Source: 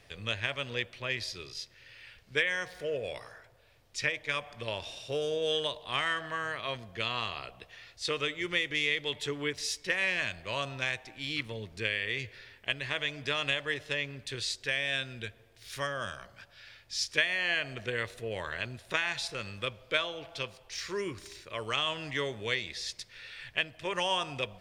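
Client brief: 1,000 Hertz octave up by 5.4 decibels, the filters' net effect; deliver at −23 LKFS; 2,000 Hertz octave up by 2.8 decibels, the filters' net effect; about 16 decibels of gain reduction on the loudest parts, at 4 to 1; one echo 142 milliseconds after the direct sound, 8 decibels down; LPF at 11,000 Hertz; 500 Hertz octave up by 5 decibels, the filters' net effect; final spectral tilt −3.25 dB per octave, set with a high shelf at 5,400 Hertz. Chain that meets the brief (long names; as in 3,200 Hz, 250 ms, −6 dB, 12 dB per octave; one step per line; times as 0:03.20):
low-pass filter 11,000 Hz
parametric band 500 Hz +4.5 dB
parametric band 1,000 Hz +5 dB
parametric band 2,000 Hz +3 dB
high-shelf EQ 5,400 Hz −7.5 dB
downward compressor 4 to 1, threshold −40 dBFS
single-tap delay 142 ms −8 dB
level +18.5 dB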